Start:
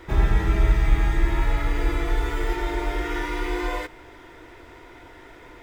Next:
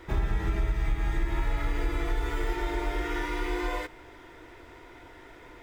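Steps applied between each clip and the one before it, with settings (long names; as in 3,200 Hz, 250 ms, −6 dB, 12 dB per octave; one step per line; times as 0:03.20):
downward compressor, threshold −19 dBFS, peak gain reduction 8 dB
level −3.5 dB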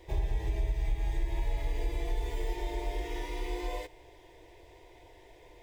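phaser with its sweep stopped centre 560 Hz, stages 4
level −2.5 dB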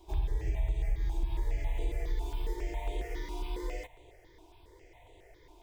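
step-sequenced phaser 7.3 Hz 510–5,200 Hz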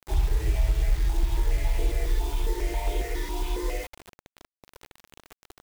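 bit-depth reduction 8 bits, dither none
level +7.5 dB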